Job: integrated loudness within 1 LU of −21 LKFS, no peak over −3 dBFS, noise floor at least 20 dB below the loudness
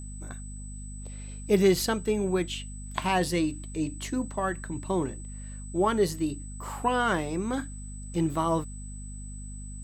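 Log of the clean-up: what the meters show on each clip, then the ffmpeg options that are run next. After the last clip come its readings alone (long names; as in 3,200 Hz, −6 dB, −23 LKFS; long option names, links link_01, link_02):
mains hum 50 Hz; hum harmonics up to 250 Hz; level of the hum −37 dBFS; interfering tone 8,000 Hz; level of the tone −46 dBFS; integrated loudness −28.5 LKFS; sample peak −8.5 dBFS; target loudness −21.0 LKFS
→ -af "bandreject=frequency=50:width_type=h:width=4,bandreject=frequency=100:width_type=h:width=4,bandreject=frequency=150:width_type=h:width=4,bandreject=frequency=200:width_type=h:width=4,bandreject=frequency=250:width_type=h:width=4"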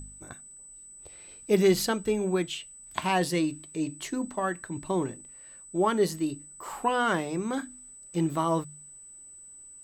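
mains hum none found; interfering tone 8,000 Hz; level of the tone −46 dBFS
→ -af "bandreject=frequency=8000:width=30"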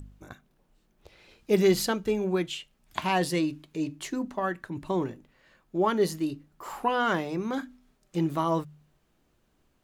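interfering tone none found; integrated loudness −28.5 LKFS; sample peak −9.0 dBFS; target loudness −21.0 LKFS
→ -af "volume=7.5dB,alimiter=limit=-3dB:level=0:latency=1"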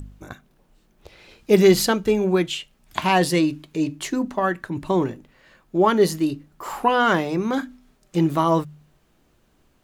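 integrated loudness −21.0 LKFS; sample peak −3.0 dBFS; background noise floor −62 dBFS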